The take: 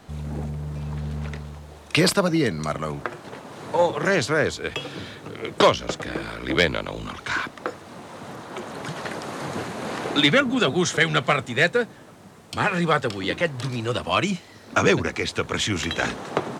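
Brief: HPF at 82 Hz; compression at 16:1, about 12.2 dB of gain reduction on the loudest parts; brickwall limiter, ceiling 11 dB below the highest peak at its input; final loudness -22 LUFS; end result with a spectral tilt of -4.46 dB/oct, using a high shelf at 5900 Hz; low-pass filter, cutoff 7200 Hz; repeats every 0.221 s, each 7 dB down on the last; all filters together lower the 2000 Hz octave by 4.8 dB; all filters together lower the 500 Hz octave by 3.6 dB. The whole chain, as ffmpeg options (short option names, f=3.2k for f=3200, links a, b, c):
-af "highpass=82,lowpass=7.2k,equalizer=f=500:t=o:g=-4,equalizer=f=2k:t=o:g=-5.5,highshelf=f=5.9k:g=-3.5,acompressor=threshold=-28dB:ratio=16,alimiter=limit=-24dB:level=0:latency=1,aecho=1:1:221|442|663|884|1105:0.447|0.201|0.0905|0.0407|0.0183,volume=12.5dB"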